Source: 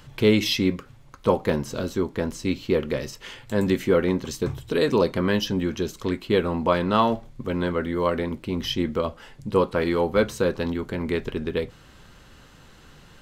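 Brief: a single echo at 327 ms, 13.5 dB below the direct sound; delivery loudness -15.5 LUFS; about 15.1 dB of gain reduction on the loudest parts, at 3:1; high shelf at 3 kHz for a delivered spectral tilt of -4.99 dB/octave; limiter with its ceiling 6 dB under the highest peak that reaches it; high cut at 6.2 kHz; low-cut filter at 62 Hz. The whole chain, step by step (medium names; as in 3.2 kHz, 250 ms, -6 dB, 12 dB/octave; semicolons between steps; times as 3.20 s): high-pass 62 Hz; low-pass 6.2 kHz; treble shelf 3 kHz +6 dB; compression 3:1, threshold -35 dBFS; peak limiter -24.5 dBFS; delay 327 ms -13.5 dB; trim +21.5 dB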